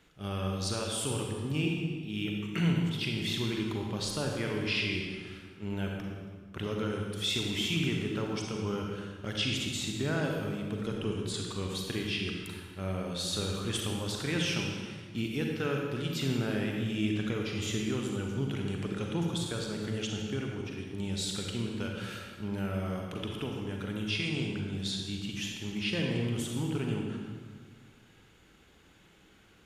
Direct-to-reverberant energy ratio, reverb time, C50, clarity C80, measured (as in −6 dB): 0.5 dB, 1.6 s, 1.0 dB, 3.0 dB